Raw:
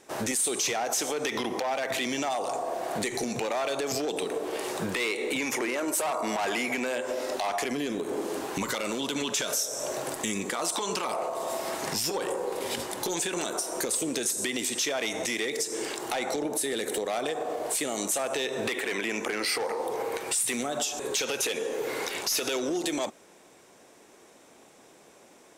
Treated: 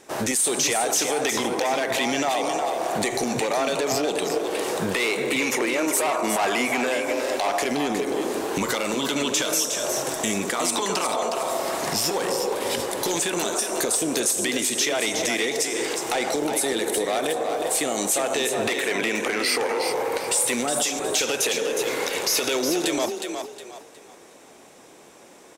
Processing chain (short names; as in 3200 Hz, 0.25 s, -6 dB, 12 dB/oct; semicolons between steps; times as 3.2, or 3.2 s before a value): frequency-shifting echo 0.363 s, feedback 32%, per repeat +35 Hz, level -6.5 dB; gain +5 dB